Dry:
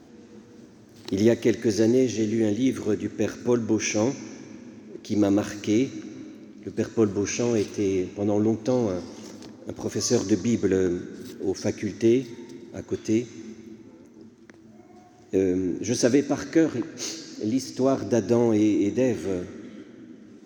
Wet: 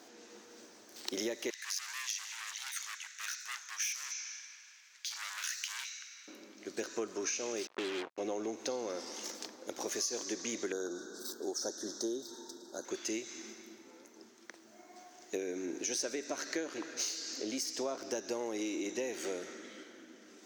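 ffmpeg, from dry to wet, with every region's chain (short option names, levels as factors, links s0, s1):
-filter_complex "[0:a]asettb=1/sr,asplit=3[s0][s1][s2];[s0]atrim=end=1.504[s3];[s1]atrim=start=1.5:end=6.28,asetpts=PTS-STARTPTS,afade=t=in:d=0.004:c=qsin,afade=t=out:st=4.776:d=0.004:c=qsin,asoftclip=type=hard:threshold=0.0531,highpass=f=1500:w=0.5412,highpass=f=1500:w=1.3066[s4];[s2]atrim=start=6.276[s5];[s3][s4]acrossfade=d=0.004:c1=hsin:c2=qsin[s6];[s6][s5]acrossfade=d=0.004:c1=qsin:c2=hsin,asettb=1/sr,asplit=3[s7][s8][s9];[s7]atrim=end=7.674[s10];[s8]atrim=start=7.67:end=8.18,asetpts=PTS-STARTPTS,afade=t=in:d=0.004:c=qsin,afade=t=out:st=0.506:d=0.004:c=qsin,lowpass=1200,acrusher=bits=4:mix=0:aa=0.5[s11];[s9]atrim=start=8.176[s12];[s10][s11]acrossfade=d=0.004:c1=hsin:c2=qsin[s13];[s13][s12]acrossfade=d=0.004:c1=qsin:c2=hsin,asettb=1/sr,asplit=3[s14][s15][s16];[s14]atrim=end=10.724[s17];[s15]atrim=start=10.72:end=12.85,asetpts=PTS-STARTPTS,afade=t=in:d=0.004:c=qsin,afade=t=out:st=2.126:d=0.004:c=qsin,asuperstop=centerf=2400:order=8:qfactor=1.2,lowshelf=f=100:g=-9.5[s18];[s16]atrim=start=12.846[s19];[s17][s18]acrossfade=d=0.004:c1=hsin:c2=qsin[s20];[s20][s19]acrossfade=d=0.004:c1=qsin:c2=hsin,highpass=540,highshelf=f=3400:g=7.5,acompressor=threshold=0.02:ratio=6"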